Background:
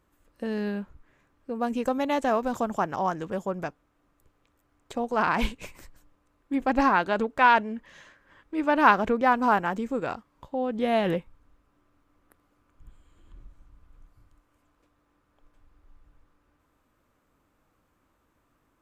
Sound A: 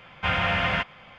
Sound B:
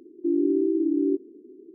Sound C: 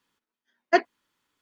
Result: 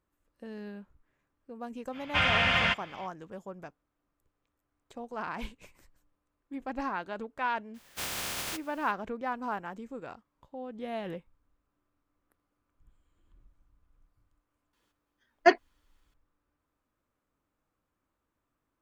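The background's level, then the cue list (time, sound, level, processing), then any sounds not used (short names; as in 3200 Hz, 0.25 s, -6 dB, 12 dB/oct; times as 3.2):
background -12.5 dB
1.91 add A -4.5 dB, fades 0.05 s + high shelf 2500 Hz +11 dB
7.74 add A -11 dB + spectral contrast lowered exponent 0.13
14.73 add C -0.5 dB
not used: B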